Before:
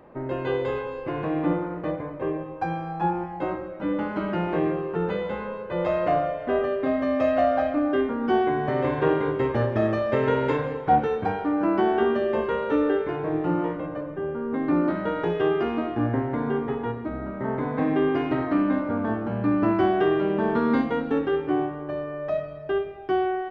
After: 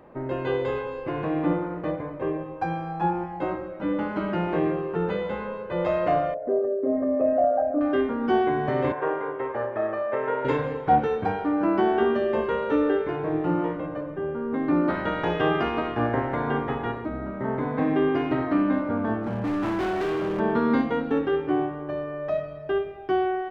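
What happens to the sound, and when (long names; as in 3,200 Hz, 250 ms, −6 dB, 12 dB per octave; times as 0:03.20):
0:06.34–0:07.81: spectral envelope exaggerated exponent 2
0:08.92–0:10.45: three-way crossover with the lows and the highs turned down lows −18 dB, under 430 Hz, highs −21 dB, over 2,100 Hz
0:14.88–0:17.04: ceiling on every frequency bin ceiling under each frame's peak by 13 dB
0:19.23–0:20.40: hard clipping −24 dBFS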